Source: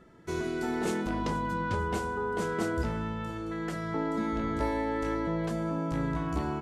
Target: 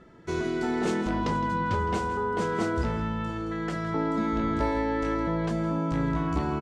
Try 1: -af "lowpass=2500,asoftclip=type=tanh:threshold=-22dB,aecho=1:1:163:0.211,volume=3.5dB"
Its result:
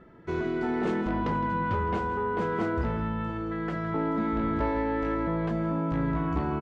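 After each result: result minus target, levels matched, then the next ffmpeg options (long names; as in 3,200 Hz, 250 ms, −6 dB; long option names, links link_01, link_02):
8,000 Hz band −15.0 dB; soft clipping: distortion +11 dB
-af "lowpass=6700,asoftclip=type=tanh:threshold=-22dB,aecho=1:1:163:0.211,volume=3.5dB"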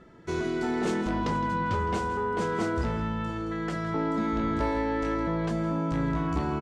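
soft clipping: distortion +11 dB
-af "lowpass=6700,asoftclip=type=tanh:threshold=-15.5dB,aecho=1:1:163:0.211,volume=3.5dB"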